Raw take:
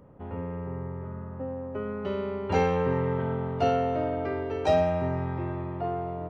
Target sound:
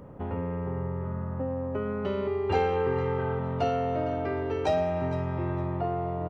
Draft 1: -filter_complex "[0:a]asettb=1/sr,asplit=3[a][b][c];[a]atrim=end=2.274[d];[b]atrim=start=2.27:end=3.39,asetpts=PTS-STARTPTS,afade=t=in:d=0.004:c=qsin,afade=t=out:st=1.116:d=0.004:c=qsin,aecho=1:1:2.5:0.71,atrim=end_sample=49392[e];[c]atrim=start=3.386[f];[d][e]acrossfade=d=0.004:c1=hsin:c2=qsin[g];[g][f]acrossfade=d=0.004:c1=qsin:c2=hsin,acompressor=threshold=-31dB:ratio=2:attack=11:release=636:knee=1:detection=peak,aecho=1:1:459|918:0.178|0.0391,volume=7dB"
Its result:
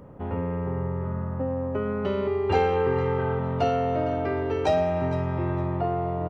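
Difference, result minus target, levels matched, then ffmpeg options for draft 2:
compressor: peak gain reduction -3.5 dB
-filter_complex "[0:a]asettb=1/sr,asplit=3[a][b][c];[a]atrim=end=2.274[d];[b]atrim=start=2.27:end=3.39,asetpts=PTS-STARTPTS,afade=t=in:d=0.004:c=qsin,afade=t=out:st=1.116:d=0.004:c=qsin,aecho=1:1:2.5:0.71,atrim=end_sample=49392[e];[c]atrim=start=3.386[f];[d][e]acrossfade=d=0.004:c1=hsin:c2=qsin[g];[g][f]acrossfade=d=0.004:c1=qsin:c2=hsin,acompressor=threshold=-37.5dB:ratio=2:attack=11:release=636:knee=1:detection=peak,aecho=1:1:459|918:0.178|0.0391,volume=7dB"

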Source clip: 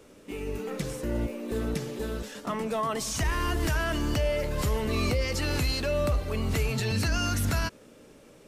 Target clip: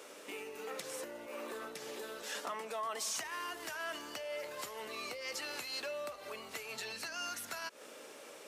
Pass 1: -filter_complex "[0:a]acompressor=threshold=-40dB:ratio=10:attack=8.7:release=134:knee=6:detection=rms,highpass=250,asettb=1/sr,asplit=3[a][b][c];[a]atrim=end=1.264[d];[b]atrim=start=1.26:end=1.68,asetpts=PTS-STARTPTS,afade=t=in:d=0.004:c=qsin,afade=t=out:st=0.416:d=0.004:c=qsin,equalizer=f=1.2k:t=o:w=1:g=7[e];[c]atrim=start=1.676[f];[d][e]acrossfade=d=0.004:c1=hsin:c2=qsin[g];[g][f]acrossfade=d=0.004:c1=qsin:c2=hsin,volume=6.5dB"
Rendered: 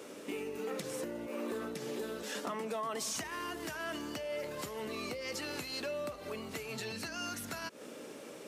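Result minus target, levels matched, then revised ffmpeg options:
250 Hz band +9.5 dB
-filter_complex "[0:a]acompressor=threshold=-40dB:ratio=10:attack=8.7:release=134:knee=6:detection=rms,highpass=600,asettb=1/sr,asplit=3[a][b][c];[a]atrim=end=1.264[d];[b]atrim=start=1.26:end=1.68,asetpts=PTS-STARTPTS,afade=t=in:d=0.004:c=qsin,afade=t=out:st=0.416:d=0.004:c=qsin,equalizer=f=1.2k:t=o:w=1:g=7[e];[c]atrim=start=1.676[f];[d][e]acrossfade=d=0.004:c1=hsin:c2=qsin[g];[g][f]acrossfade=d=0.004:c1=qsin:c2=hsin,volume=6.5dB"

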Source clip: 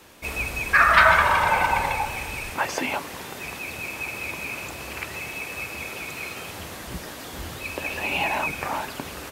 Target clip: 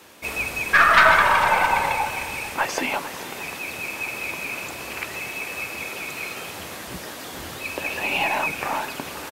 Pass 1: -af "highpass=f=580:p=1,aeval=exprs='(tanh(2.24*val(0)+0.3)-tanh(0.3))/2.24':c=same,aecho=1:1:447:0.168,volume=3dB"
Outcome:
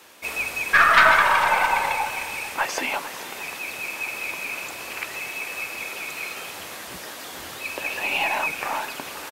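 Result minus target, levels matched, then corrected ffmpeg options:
250 Hz band -4.5 dB
-af "highpass=f=180:p=1,aeval=exprs='(tanh(2.24*val(0)+0.3)-tanh(0.3))/2.24':c=same,aecho=1:1:447:0.168,volume=3dB"

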